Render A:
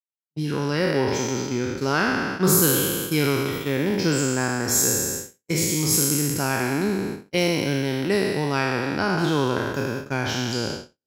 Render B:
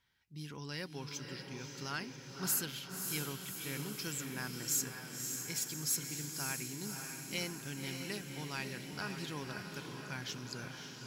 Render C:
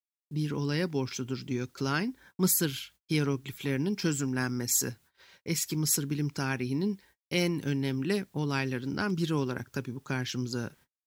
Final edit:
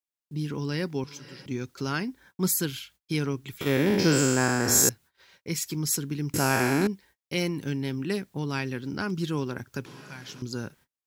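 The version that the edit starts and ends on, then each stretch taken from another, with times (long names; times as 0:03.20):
C
0:01.04–0:01.46: punch in from B
0:03.61–0:04.89: punch in from A
0:06.34–0:06.87: punch in from A
0:09.86–0:10.42: punch in from B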